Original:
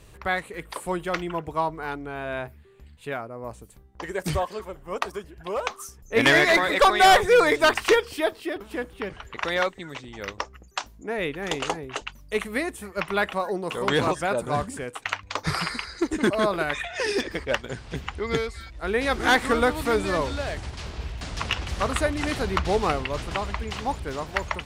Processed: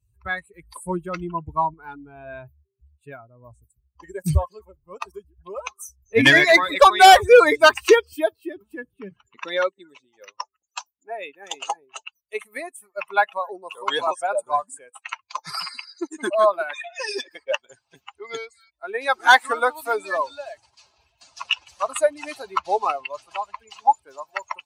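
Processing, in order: expander on every frequency bin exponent 2; high-pass sweep 68 Hz -> 690 Hz, 8.25–10.40 s; 0.63–1.74 s: bass shelf 260 Hz +8 dB; trim +8.5 dB

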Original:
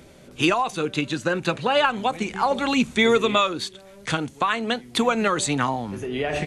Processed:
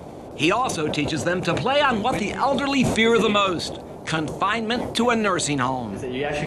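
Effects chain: band noise 63–730 Hz -38 dBFS; decay stretcher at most 55 dB/s

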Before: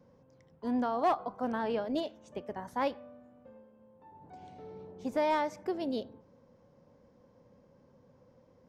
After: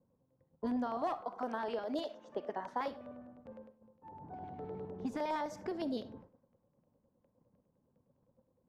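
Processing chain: gate -58 dBFS, range -17 dB; level-controlled noise filter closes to 1 kHz, open at -31 dBFS; 1.21–2.88 s: high-pass 330 Hz 12 dB/octave; compression 6:1, threshold -38 dBFS, peak gain reduction 13 dB; LFO notch square 9.8 Hz 530–2400 Hz; reverberation RT60 0.30 s, pre-delay 20 ms, DRR 15 dB; trim +5 dB

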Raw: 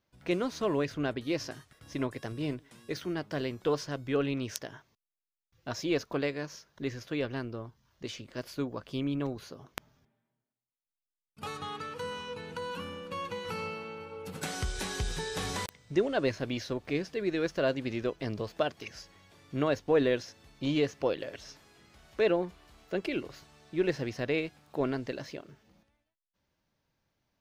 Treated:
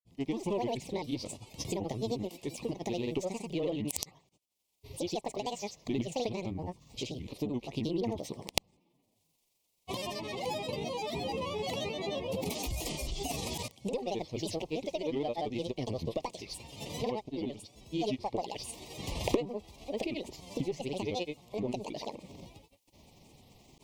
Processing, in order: single-diode clipper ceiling -20.5 dBFS; recorder AGC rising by 32 dB/s; granulator, pitch spread up and down by 7 st; Butterworth band-stop 1.3 kHz, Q 1.1; tape speed +15%; trim -7.5 dB

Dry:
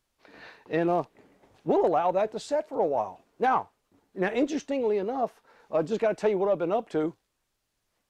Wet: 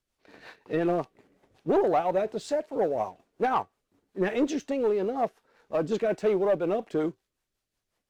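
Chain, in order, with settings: rotary cabinet horn 5.5 Hz; waveshaping leveller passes 1; feedback comb 380 Hz, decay 0.18 s, mix 30%; trim +2 dB

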